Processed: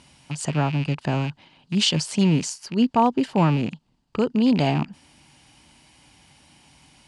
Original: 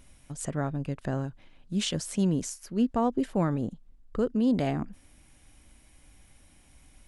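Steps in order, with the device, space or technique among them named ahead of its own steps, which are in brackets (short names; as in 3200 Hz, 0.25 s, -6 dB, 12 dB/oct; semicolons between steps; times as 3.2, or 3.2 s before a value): car door speaker with a rattle (rattling part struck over -39 dBFS, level -34 dBFS; speaker cabinet 110–9300 Hz, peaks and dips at 150 Hz +6 dB, 520 Hz -3 dB, 900 Hz +9 dB, 2900 Hz +7 dB, 4600 Hz +10 dB); gain +5.5 dB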